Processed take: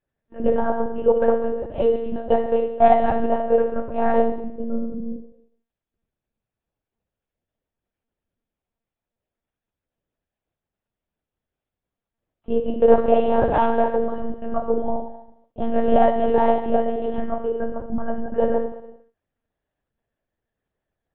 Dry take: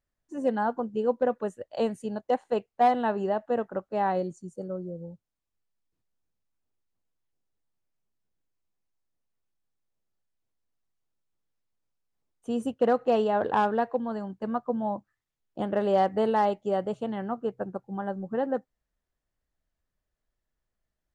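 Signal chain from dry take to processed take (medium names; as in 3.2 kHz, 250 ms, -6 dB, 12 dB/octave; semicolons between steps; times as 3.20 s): high-pass 140 Hz; reverberation RT60 0.85 s, pre-delay 3 ms, DRR -7 dB; monotone LPC vocoder at 8 kHz 230 Hz; trim -9 dB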